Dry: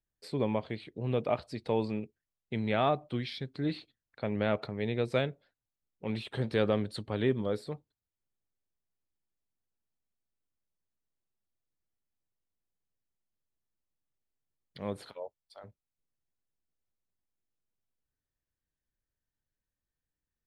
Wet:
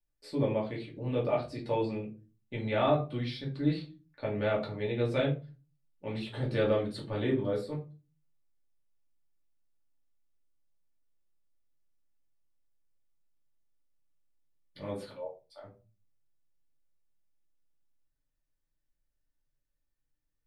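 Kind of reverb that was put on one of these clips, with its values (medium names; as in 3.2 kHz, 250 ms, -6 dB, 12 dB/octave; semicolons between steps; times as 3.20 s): simulated room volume 140 m³, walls furnished, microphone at 2.5 m; trim -6 dB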